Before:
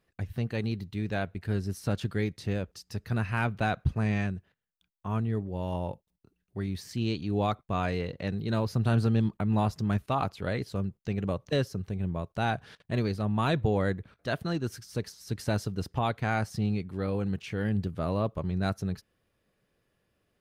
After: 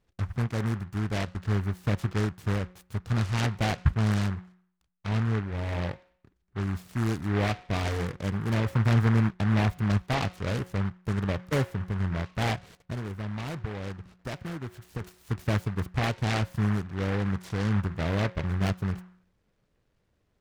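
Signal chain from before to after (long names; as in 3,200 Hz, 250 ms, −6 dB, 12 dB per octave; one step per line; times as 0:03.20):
high-shelf EQ 3,500 Hz −11.5 dB
hum removal 181.9 Hz, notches 8
0:12.54–0:15.01: downward compressor 6 to 1, threshold −34 dBFS, peak gain reduction 12 dB
low-shelf EQ 87 Hz +10 dB
short delay modulated by noise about 1,200 Hz, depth 0.17 ms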